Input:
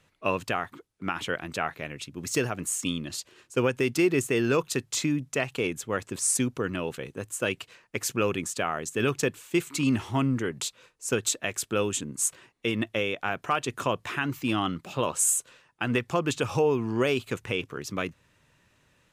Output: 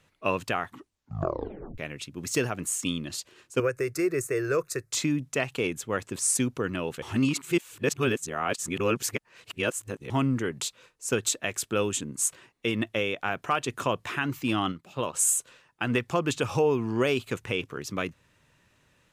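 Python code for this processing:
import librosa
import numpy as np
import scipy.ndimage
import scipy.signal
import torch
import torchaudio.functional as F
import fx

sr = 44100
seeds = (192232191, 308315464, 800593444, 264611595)

y = fx.fixed_phaser(x, sr, hz=860.0, stages=6, at=(3.6, 4.92))
y = fx.upward_expand(y, sr, threshold_db=-39.0, expansion=1.5, at=(14.71, 15.13), fade=0.02)
y = fx.edit(y, sr, fx.tape_stop(start_s=0.66, length_s=1.12),
    fx.reverse_span(start_s=7.02, length_s=3.08), tone=tone)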